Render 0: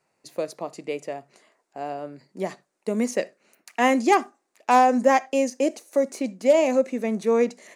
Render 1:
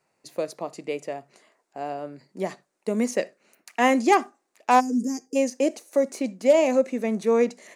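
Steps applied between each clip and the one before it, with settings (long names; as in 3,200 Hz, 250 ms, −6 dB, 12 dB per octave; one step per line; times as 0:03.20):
gain on a spectral selection 0:04.80–0:05.36, 490–4,600 Hz −27 dB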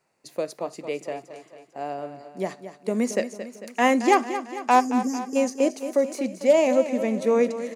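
repeating echo 224 ms, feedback 56%, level −11.5 dB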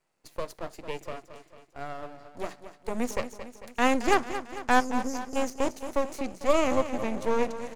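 half-wave rectification
level −1.5 dB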